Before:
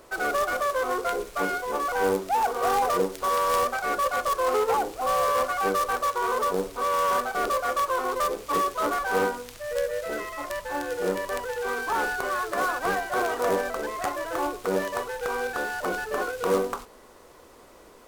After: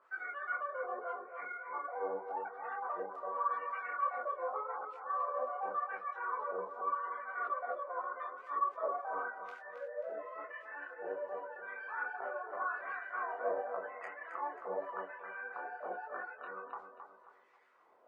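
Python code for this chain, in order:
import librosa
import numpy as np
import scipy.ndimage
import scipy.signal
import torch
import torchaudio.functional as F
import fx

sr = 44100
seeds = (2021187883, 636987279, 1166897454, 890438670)

p1 = fx.steep_lowpass(x, sr, hz=2700.0, slope=36, at=(1.2, 2.2))
p2 = fx.spec_gate(p1, sr, threshold_db=-25, keep='strong')
p3 = fx.wah_lfo(p2, sr, hz=0.87, low_hz=620.0, high_hz=2100.0, q=3.1)
p4 = p3 + fx.echo_feedback(p3, sr, ms=268, feedback_pct=37, wet_db=-8, dry=0)
p5 = fx.detune_double(p4, sr, cents=28)
y = F.gain(torch.from_numpy(p5), -3.0).numpy()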